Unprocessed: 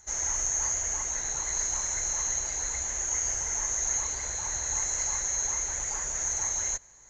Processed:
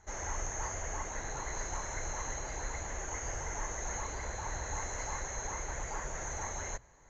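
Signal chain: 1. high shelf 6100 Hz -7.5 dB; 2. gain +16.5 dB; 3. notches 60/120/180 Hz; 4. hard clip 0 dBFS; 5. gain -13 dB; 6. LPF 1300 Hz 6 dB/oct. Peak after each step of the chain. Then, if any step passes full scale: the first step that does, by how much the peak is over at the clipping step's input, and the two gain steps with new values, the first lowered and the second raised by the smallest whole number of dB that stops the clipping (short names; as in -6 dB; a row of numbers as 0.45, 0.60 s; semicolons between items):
-19.0, -2.5, -2.0, -2.0, -15.0, -24.5 dBFS; no overload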